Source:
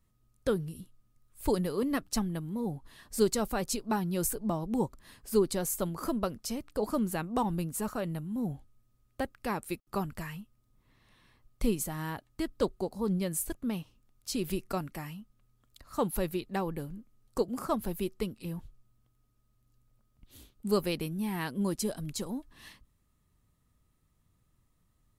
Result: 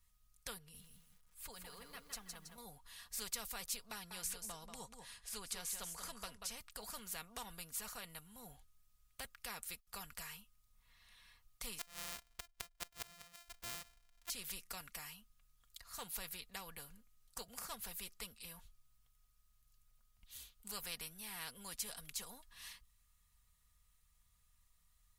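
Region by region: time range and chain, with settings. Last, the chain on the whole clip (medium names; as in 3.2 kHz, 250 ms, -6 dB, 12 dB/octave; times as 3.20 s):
0.58–2.58 s: treble shelf 4.1 kHz -8.5 dB + compression 2:1, threshold -41 dBFS + bit-crushed delay 162 ms, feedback 35%, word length 11-bit, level -7 dB
3.92–6.58 s: low-pass 11 kHz 24 dB/octave + delay 187 ms -11.5 dB
11.79–14.30 s: sorted samples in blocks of 128 samples + inverted gate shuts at -23 dBFS, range -25 dB
whole clip: amplifier tone stack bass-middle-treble 10-0-10; comb 4.2 ms, depth 51%; spectrum-flattening compressor 2:1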